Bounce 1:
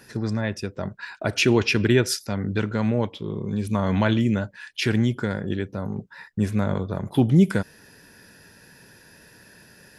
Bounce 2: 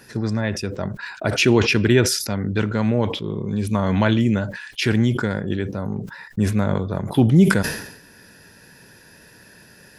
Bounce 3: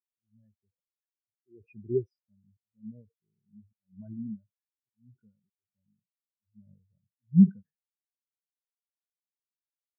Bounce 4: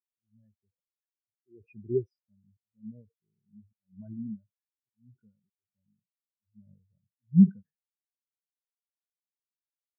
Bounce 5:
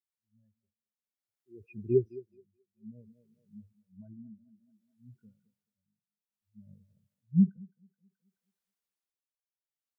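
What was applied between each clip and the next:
sustainer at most 72 dB/s; gain +2.5 dB
auto swell 0.309 s; spectral expander 4:1; gain -7.5 dB
nothing audible
thinning echo 0.214 s, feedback 45%, high-pass 360 Hz, level -11.5 dB; AGC gain up to 9.5 dB; tremolo 0.58 Hz, depth 86%; gain -5 dB

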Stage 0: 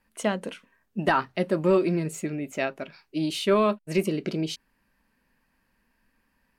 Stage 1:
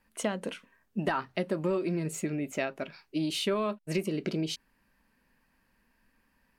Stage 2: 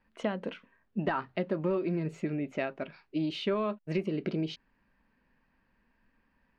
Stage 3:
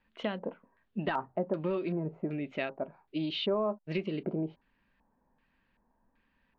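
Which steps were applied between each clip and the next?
compressor 4:1, threshold -27 dBFS, peak gain reduction 9.5 dB
air absorption 240 m
LFO low-pass square 1.3 Hz 830–3600 Hz; gain -2.5 dB

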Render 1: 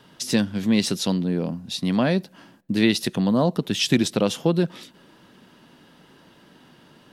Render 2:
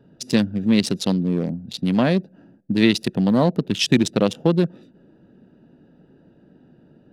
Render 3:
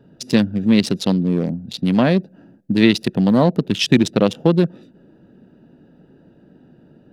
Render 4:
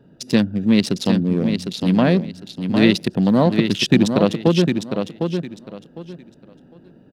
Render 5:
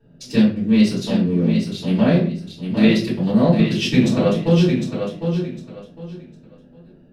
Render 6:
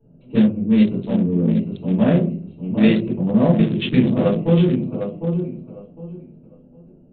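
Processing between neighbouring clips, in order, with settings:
Wiener smoothing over 41 samples; gain +3 dB
dynamic EQ 8300 Hz, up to -5 dB, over -40 dBFS, Q 0.78; gain +3 dB
feedback echo 0.755 s, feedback 23%, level -6.5 dB; gain -1 dB
reverb RT60 0.45 s, pre-delay 3 ms, DRR -11.5 dB; gain -16 dB
Wiener smoothing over 25 samples; downsampling 8000 Hz

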